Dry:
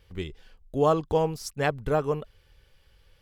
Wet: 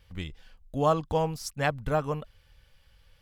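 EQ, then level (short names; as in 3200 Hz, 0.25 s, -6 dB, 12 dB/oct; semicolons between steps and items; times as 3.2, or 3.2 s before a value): bell 390 Hz -14 dB 0.37 oct; 0.0 dB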